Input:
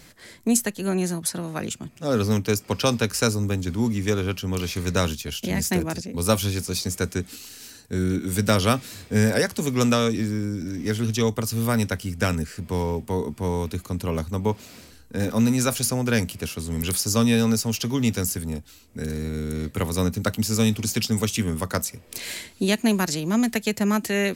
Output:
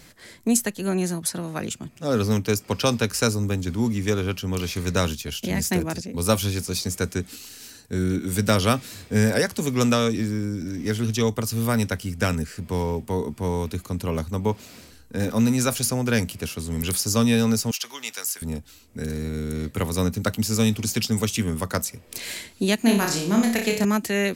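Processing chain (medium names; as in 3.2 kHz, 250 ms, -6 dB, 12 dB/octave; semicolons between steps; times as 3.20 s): 17.71–18.42 s: high-pass 1 kHz 12 dB/octave; 22.78–23.85 s: flutter echo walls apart 5.2 m, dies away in 0.46 s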